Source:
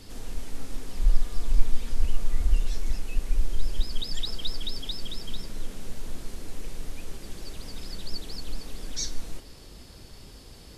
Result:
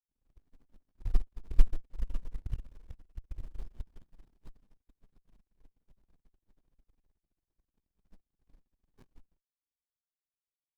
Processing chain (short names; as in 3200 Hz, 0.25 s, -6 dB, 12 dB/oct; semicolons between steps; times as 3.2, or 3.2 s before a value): power-law curve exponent 3; running maximum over 65 samples; gain +1 dB